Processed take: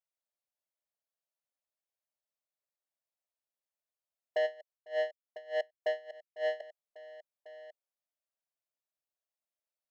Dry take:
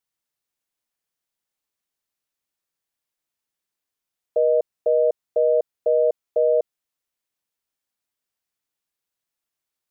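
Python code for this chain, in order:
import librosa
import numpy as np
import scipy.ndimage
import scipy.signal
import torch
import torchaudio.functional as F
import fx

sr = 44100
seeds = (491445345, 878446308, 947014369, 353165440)

y = fx.level_steps(x, sr, step_db=14)
y = fx.highpass_res(y, sr, hz=600.0, q=4.5)
y = 10.0 ** (-24.5 / 20.0) * np.tanh(y / 10.0 ** (-24.5 / 20.0))
y = y + 10.0 ** (-21.5 / 20.0) * np.pad(y, (int(1096 * sr / 1000.0), 0))[:len(y)]
y = fx.tremolo_db(y, sr, hz=3.4, depth_db=25, at=(4.45, 6.6), fade=0.02)
y = y * 10.0 ** (-2.0 / 20.0)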